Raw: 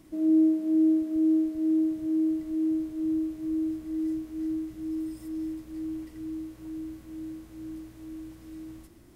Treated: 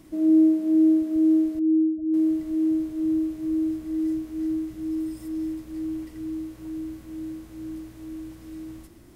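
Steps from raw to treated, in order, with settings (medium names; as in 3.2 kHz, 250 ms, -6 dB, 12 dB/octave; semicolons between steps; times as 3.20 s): 1.59–2.14 s: spectral gate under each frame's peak -20 dB strong; trim +4 dB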